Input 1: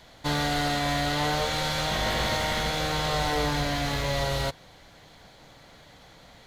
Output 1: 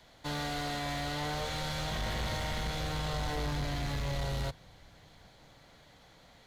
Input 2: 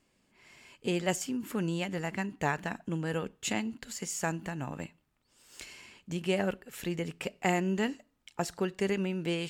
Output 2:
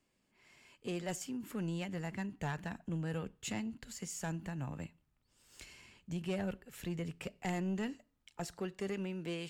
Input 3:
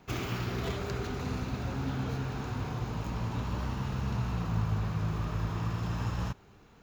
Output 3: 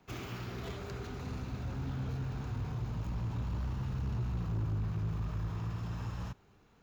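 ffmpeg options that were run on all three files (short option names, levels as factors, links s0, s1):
-filter_complex "[0:a]acrossover=split=160[s0][s1];[s0]dynaudnorm=f=240:g=13:m=2.82[s2];[s2][s1]amix=inputs=2:normalize=0,asoftclip=type=tanh:threshold=0.0794,volume=0.447"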